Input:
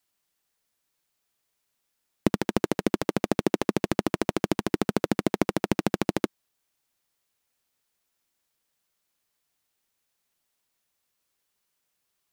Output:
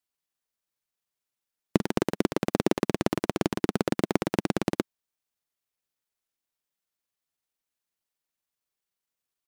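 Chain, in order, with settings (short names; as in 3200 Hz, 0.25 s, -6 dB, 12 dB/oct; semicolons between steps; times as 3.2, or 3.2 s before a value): tempo 1.3×; upward expander 1.5:1, over -38 dBFS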